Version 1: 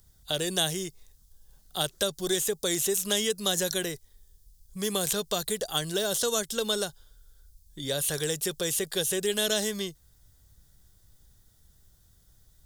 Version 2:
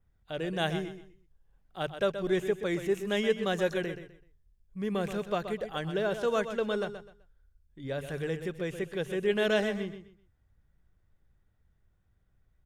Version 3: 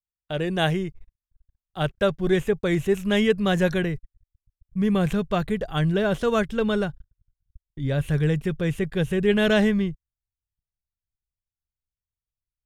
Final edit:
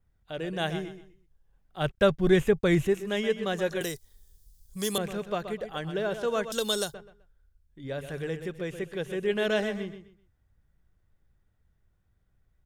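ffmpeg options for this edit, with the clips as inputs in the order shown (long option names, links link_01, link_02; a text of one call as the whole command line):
ffmpeg -i take0.wav -i take1.wav -i take2.wav -filter_complex "[0:a]asplit=2[link_01][link_02];[1:a]asplit=4[link_03][link_04][link_05][link_06];[link_03]atrim=end=1.92[link_07];[2:a]atrim=start=1.76:end=2.98[link_08];[link_04]atrim=start=2.82:end=3.812[link_09];[link_01]atrim=start=3.808:end=4.982[link_10];[link_05]atrim=start=4.978:end=6.522[link_11];[link_02]atrim=start=6.518:end=6.942[link_12];[link_06]atrim=start=6.938[link_13];[link_07][link_08]acrossfade=duration=0.16:curve1=tri:curve2=tri[link_14];[link_14][link_09]acrossfade=duration=0.16:curve1=tri:curve2=tri[link_15];[link_15][link_10]acrossfade=duration=0.004:curve1=hsin:curve2=hsin[link_16];[link_16][link_11]acrossfade=duration=0.004:curve1=hsin:curve2=hsin[link_17];[link_17][link_12]acrossfade=duration=0.004:curve1=hsin:curve2=hsin[link_18];[link_18][link_13]acrossfade=duration=0.004:curve1=hsin:curve2=hsin" out.wav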